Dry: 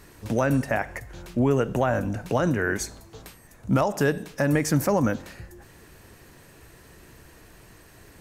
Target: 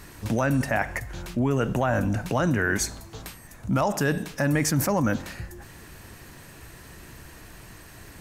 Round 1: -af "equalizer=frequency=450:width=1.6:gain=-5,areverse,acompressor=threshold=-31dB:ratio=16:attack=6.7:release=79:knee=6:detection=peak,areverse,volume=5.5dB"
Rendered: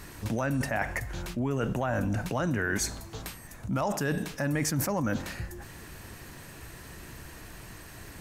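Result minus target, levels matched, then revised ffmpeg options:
downward compressor: peak gain reduction +6 dB
-af "equalizer=frequency=450:width=1.6:gain=-5,areverse,acompressor=threshold=-24.5dB:ratio=16:attack=6.7:release=79:knee=6:detection=peak,areverse,volume=5.5dB"

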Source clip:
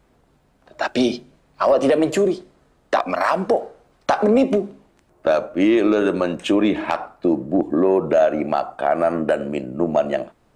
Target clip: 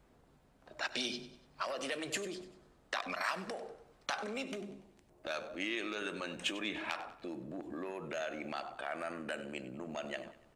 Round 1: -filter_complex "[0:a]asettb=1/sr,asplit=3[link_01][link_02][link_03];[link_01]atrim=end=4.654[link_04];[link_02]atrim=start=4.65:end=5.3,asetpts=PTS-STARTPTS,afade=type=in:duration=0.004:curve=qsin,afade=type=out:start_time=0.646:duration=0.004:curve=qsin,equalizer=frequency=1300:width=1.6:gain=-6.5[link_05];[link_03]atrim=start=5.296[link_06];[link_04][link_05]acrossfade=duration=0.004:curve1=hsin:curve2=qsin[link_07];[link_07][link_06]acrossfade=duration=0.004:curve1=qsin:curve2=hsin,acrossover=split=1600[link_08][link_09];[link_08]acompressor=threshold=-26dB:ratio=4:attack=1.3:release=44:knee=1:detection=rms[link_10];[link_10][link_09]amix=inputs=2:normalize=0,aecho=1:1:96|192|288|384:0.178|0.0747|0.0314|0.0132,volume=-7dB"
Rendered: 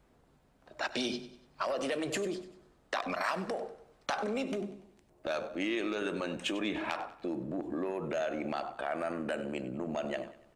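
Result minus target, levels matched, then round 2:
downward compressor: peak gain reduction −7.5 dB
-filter_complex "[0:a]asettb=1/sr,asplit=3[link_01][link_02][link_03];[link_01]atrim=end=4.654[link_04];[link_02]atrim=start=4.65:end=5.3,asetpts=PTS-STARTPTS,afade=type=in:duration=0.004:curve=qsin,afade=type=out:start_time=0.646:duration=0.004:curve=qsin,equalizer=frequency=1300:width=1.6:gain=-6.5[link_05];[link_03]atrim=start=5.296[link_06];[link_04][link_05]acrossfade=duration=0.004:curve1=hsin:curve2=qsin[link_07];[link_07][link_06]acrossfade=duration=0.004:curve1=qsin:curve2=hsin,acrossover=split=1600[link_08][link_09];[link_08]acompressor=threshold=-36dB:ratio=4:attack=1.3:release=44:knee=1:detection=rms[link_10];[link_10][link_09]amix=inputs=2:normalize=0,aecho=1:1:96|192|288|384:0.178|0.0747|0.0314|0.0132,volume=-7dB"

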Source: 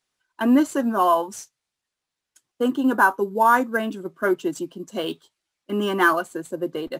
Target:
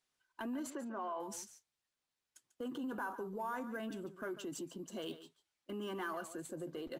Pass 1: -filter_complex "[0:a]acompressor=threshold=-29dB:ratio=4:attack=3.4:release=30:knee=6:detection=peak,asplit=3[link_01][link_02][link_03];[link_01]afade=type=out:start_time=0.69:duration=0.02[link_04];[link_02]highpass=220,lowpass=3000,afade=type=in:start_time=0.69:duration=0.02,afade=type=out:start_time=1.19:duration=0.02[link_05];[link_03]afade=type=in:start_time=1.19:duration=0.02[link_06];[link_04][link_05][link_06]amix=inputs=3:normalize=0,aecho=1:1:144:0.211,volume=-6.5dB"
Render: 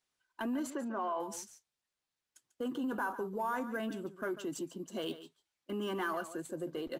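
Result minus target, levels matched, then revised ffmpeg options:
downward compressor: peak gain reduction −5 dB
-filter_complex "[0:a]acompressor=threshold=-36dB:ratio=4:attack=3.4:release=30:knee=6:detection=peak,asplit=3[link_01][link_02][link_03];[link_01]afade=type=out:start_time=0.69:duration=0.02[link_04];[link_02]highpass=220,lowpass=3000,afade=type=in:start_time=0.69:duration=0.02,afade=type=out:start_time=1.19:duration=0.02[link_05];[link_03]afade=type=in:start_time=1.19:duration=0.02[link_06];[link_04][link_05][link_06]amix=inputs=3:normalize=0,aecho=1:1:144:0.211,volume=-6.5dB"

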